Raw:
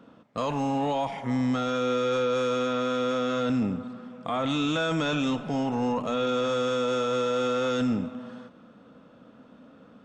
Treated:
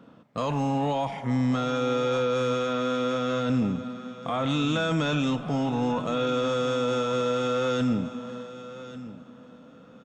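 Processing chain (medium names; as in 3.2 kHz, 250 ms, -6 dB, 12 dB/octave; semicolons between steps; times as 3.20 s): peaking EQ 140 Hz +5.5 dB 0.62 oct; feedback delay 1143 ms, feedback 16%, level -15 dB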